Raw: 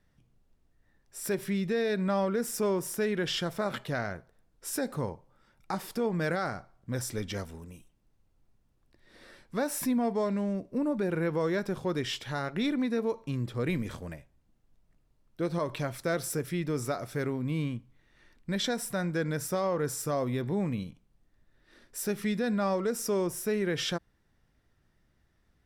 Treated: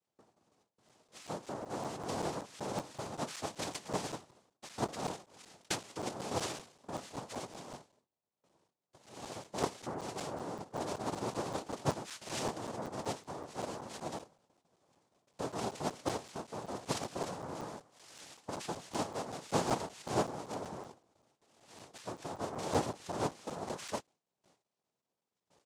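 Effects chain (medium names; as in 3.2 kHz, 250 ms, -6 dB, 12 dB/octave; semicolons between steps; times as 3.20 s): rattle on loud lows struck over -45 dBFS, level -39 dBFS; doubling 20 ms -9 dB; gate with hold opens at -57 dBFS; compression 6:1, threshold -44 dBFS, peak gain reduction 19.5 dB; distance through air 72 m; small resonant body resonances 550/880/1300 Hz, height 17 dB, ringing for 70 ms; noise-vocoded speech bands 2; crackling interface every 0.19 s, samples 256, zero, from 0.89 s; 17.55–20.02 s: tape noise reduction on one side only encoder only; trim +2 dB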